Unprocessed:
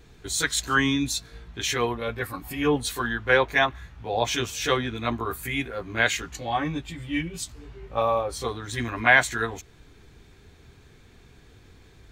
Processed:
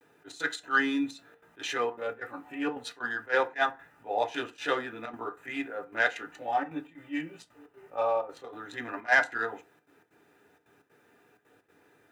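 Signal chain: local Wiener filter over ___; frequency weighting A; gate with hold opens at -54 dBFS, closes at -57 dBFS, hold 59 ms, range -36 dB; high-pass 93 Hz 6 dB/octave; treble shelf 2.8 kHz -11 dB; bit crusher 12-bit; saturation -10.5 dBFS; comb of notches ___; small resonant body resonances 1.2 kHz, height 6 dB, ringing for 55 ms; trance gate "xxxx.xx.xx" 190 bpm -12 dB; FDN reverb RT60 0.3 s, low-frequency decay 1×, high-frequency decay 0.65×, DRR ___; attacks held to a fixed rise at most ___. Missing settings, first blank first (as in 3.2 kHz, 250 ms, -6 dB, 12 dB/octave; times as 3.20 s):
9 samples, 1.1 kHz, 7.5 dB, 340 dB/s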